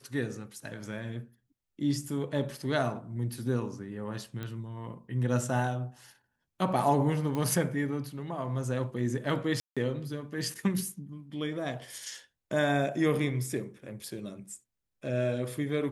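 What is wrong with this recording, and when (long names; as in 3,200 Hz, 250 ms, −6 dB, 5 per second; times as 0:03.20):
0:04.43: click −24 dBFS
0:07.35: click −21 dBFS
0:09.60–0:09.77: drop-out 166 ms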